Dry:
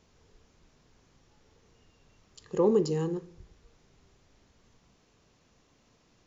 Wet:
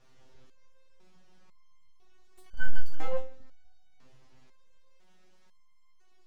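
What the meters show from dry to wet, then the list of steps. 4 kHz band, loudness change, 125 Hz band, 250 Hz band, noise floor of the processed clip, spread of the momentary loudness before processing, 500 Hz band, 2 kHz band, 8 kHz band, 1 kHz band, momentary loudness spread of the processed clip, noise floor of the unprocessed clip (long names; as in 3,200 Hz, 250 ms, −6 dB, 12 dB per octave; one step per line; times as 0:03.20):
−5.0 dB, −11.5 dB, −5.5 dB, −23.0 dB, −55 dBFS, 12 LU, −13.0 dB, +14.0 dB, can't be measured, −5.5 dB, 13 LU, −67 dBFS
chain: high-frequency loss of the air 79 metres
full-wave rectification
step-sequenced resonator 2 Hz 130–1,500 Hz
level +14 dB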